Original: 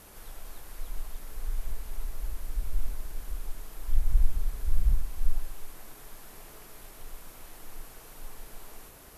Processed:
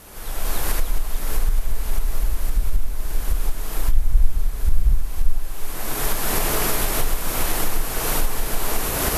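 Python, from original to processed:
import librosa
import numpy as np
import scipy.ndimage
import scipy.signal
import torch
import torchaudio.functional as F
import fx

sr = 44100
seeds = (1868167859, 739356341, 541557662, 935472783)

y = fx.recorder_agc(x, sr, target_db=-16.5, rise_db_per_s=29.0, max_gain_db=30)
y = y * 10.0 ** (6.5 / 20.0)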